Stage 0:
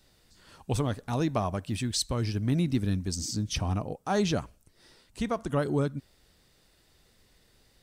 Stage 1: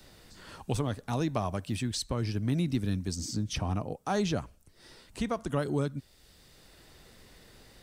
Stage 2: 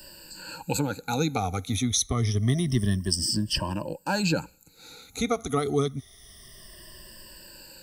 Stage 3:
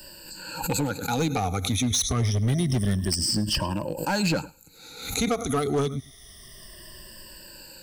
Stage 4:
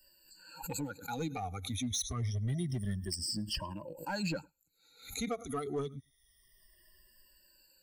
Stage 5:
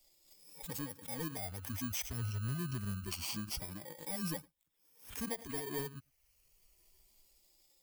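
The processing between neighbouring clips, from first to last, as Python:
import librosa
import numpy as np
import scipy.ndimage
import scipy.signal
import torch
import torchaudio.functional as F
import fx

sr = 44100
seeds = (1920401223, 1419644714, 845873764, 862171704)

y1 = fx.band_squash(x, sr, depth_pct=40)
y1 = y1 * 10.0 ** (-2.0 / 20.0)
y2 = fx.spec_ripple(y1, sr, per_octave=1.3, drift_hz=-0.27, depth_db=22)
y2 = fx.high_shelf(y2, sr, hz=4000.0, db=9.0)
y3 = y2 + 10.0 ** (-21.0 / 20.0) * np.pad(y2, (int(105 * sr / 1000.0), 0))[:len(y2)]
y3 = np.clip(10.0 ** (21.0 / 20.0) * y3, -1.0, 1.0) / 10.0 ** (21.0 / 20.0)
y3 = fx.pre_swell(y3, sr, db_per_s=77.0)
y3 = y3 * 10.0 ** (2.0 / 20.0)
y4 = fx.bin_expand(y3, sr, power=1.5)
y4 = y4 * 10.0 ** (-9.0 / 20.0)
y5 = fx.bit_reversed(y4, sr, seeds[0], block=32)
y5 = fx.quant_float(y5, sr, bits=4)
y5 = y5 * 10.0 ** (-3.5 / 20.0)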